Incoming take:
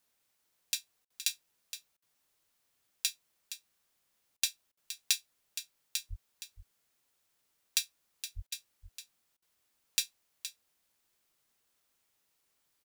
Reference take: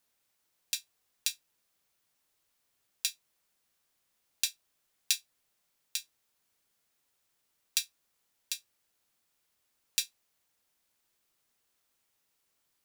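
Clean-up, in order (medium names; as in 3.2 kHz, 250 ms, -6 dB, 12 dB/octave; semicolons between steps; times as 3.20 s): clip repair -7.5 dBFS; 6.09–6.21 s: high-pass 140 Hz 24 dB/octave; 8.35–8.47 s: high-pass 140 Hz 24 dB/octave; interpolate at 1.05/1.97/4.37/4.72/8.47/9.37 s, 50 ms; inverse comb 468 ms -11.5 dB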